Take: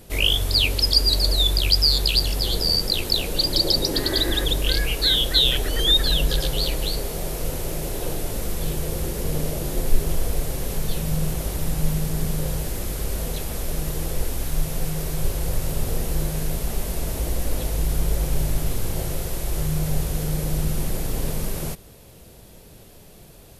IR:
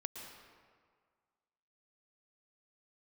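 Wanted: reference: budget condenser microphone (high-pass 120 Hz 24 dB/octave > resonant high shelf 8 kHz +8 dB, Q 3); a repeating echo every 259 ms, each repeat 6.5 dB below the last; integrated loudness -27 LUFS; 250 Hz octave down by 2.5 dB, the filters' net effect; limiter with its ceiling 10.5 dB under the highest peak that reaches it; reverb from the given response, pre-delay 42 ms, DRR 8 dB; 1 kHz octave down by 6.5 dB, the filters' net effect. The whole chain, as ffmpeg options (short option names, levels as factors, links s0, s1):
-filter_complex "[0:a]equalizer=f=250:t=o:g=-3.5,equalizer=f=1000:t=o:g=-9,alimiter=limit=0.188:level=0:latency=1,aecho=1:1:259|518|777|1036|1295|1554:0.473|0.222|0.105|0.0491|0.0231|0.0109,asplit=2[s0][s1];[1:a]atrim=start_sample=2205,adelay=42[s2];[s1][s2]afir=irnorm=-1:irlink=0,volume=0.473[s3];[s0][s3]amix=inputs=2:normalize=0,highpass=f=120:w=0.5412,highpass=f=120:w=1.3066,highshelf=f=8000:t=q:w=3:g=8,volume=0.501"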